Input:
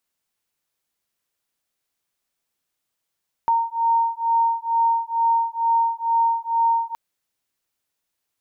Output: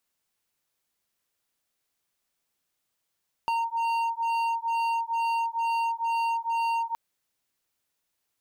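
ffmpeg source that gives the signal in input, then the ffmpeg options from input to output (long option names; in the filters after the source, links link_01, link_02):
-f lavfi -i "aevalsrc='0.0944*(sin(2*PI*920*t)+sin(2*PI*922.2*t))':duration=3.47:sample_rate=44100"
-af "asoftclip=type=hard:threshold=-22.5dB,acompressor=threshold=-26dB:ratio=6"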